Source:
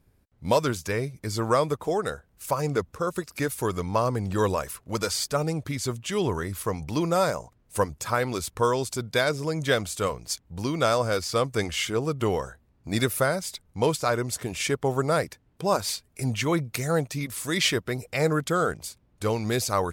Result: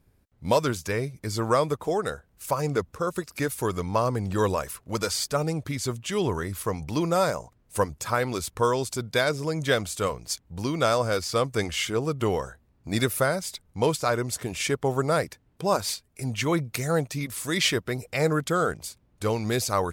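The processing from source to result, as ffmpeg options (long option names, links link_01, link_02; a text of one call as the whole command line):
ffmpeg -i in.wav -filter_complex "[0:a]asplit=3[link_01][link_02][link_03];[link_01]atrim=end=15.942[link_04];[link_02]atrim=start=15.938:end=16.382,asetpts=PTS-STARTPTS,volume=-3dB[link_05];[link_03]atrim=start=16.378[link_06];[link_04][link_05]acrossfade=duration=0.004:curve1=hsin:curve2=hsin[link_07];[link_07][link_06]acrossfade=duration=0.004:curve1=hsin:curve2=hsin" out.wav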